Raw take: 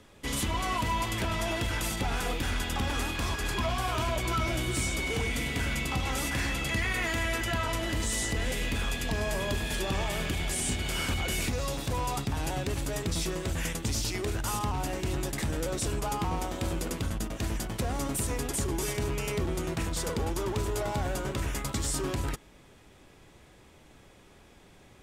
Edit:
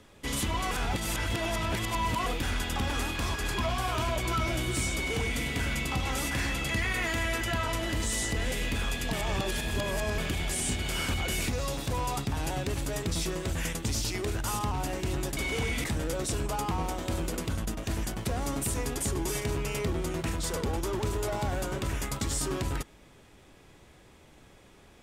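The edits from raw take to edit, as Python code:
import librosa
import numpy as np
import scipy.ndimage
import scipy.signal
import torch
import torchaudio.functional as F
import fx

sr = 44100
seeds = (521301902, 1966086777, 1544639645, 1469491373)

y = fx.edit(x, sr, fx.reverse_span(start_s=0.71, length_s=1.55),
    fx.duplicate(start_s=4.95, length_s=0.47, to_s=15.37),
    fx.reverse_span(start_s=9.13, length_s=1.05), tone=tone)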